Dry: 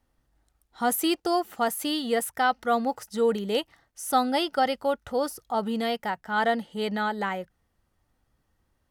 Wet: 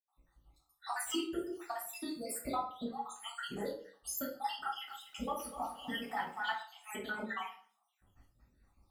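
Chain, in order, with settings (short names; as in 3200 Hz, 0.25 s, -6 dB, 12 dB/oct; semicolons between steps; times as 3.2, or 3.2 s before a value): random spectral dropouts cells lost 72%; dynamic EQ 4000 Hz, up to -6 dB, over -57 dBFS, Q 3.2; harmonic-percussive split harmonic -17 dB; compressor 5:1, threshold -42 dBFS, peak gain reduction 19.5 dB; tremolo saw up 0.73 Hz, depth 40%; reverb RT60 0.50 s, pre-delay 76 ms; 4.62–6.63 lo-fi delay 0.25 s, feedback 35%, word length 12-bit, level -11.5 dB; gain +11.5 dB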